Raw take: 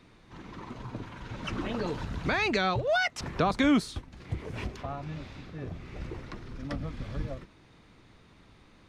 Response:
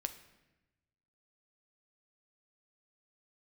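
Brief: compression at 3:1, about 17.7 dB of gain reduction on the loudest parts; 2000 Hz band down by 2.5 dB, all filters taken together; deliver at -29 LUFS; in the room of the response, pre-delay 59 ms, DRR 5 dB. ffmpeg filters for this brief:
-filter_complex "[0:a]equalizer=f=2k:t=o:g=-3.5,acompressor=threshold=-45dB:ratio=3,asplit=2[a][b];[1:a]atrim=start_sample=2205,adelay=59[c];[b][c]afir=irnorm=-1:irlink=0,volume=-4.5dB[d];[a][d]amix=inputs=2:normalize=0,volume=16dB"

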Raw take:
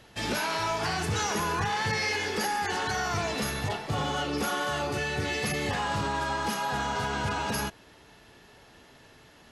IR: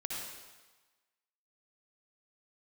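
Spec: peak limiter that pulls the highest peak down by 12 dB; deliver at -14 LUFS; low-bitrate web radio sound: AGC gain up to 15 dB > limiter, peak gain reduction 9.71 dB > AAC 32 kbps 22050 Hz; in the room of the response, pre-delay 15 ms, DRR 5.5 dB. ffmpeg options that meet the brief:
-filter_complex "[0:a]alimiter=level_in=6.5dB:limit=-24dB:level=0:latency=1,volume=-6.5dB,asplit=2[a][b];[1:a]atrim=start_sample=2205,adelay=15[c];[b][c]afir=irnorm=-1:irlink=0,volume=-7.5dB[d];[a][d]amix=inputs=2:normalize=0,dynaudnorm=m=15dB,alimiter=level_in=12dB:limit=-24dB:level=0:latency=1,volume=-12dB,volume=29dB" -ar 22050 -c:a aac -b:a 32k

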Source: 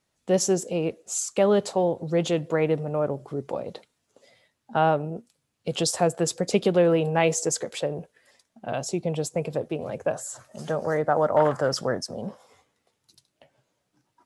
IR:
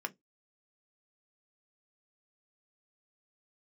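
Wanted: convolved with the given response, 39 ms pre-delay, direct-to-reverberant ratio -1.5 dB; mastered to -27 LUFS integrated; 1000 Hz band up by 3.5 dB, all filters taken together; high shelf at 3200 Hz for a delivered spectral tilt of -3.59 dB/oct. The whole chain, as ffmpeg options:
-filter_complex "[0:a]equalizer=f=1k:t=o:g=4,highshelf=f=3.2k:g=8.5,asplit=2[a][b];[1:a]atrim=start_sample=2205,adelay=39[c];[b][c]afir=irnorm=-1:irlink=0,volume=-0.5dB[d];[a][d]amix=inputs=2:normalize=0,volume=-6.5dB"

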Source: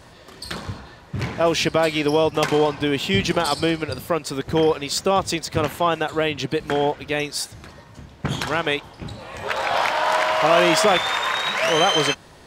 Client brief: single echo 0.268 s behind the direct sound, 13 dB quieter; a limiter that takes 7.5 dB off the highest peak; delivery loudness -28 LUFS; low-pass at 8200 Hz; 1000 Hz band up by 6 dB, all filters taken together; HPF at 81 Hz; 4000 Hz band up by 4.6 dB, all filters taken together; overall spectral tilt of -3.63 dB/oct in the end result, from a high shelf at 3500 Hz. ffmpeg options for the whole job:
-af "highpass=81,lowpass=8.2k,equalizer=f=1k:t=o:g=7.5,highshelf=f=3.5k:g=-3.5,equalizer=f=4k:t=o:g=8,alimiter=limit=-7dB:level=0:latency=1,aecho=1:1:268:0.224,volume=-9dB"

